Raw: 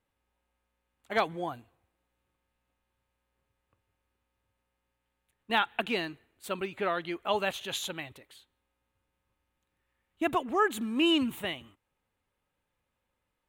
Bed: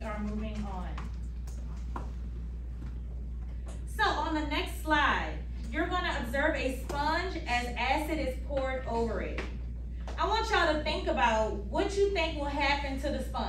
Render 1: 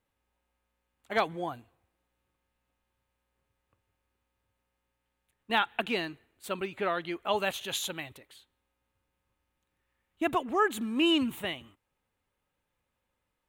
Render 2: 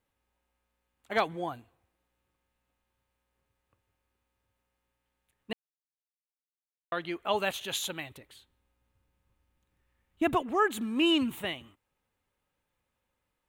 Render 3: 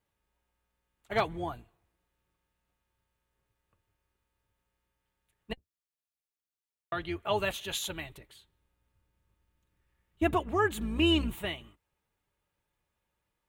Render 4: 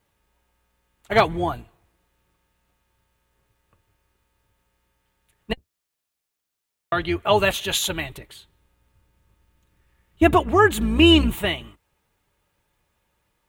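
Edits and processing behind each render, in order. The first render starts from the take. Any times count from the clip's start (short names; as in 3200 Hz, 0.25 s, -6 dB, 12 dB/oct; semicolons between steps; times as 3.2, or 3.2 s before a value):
7.37–8.17 high shelf 7000 Hz +5.5 dB
5.53–6.92 mute; 8.17–10.42 low shelf 220 Hz +9 dB
octaver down 2 oct, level -3 dB; notch comb 260 Hz
gain +11.5 dB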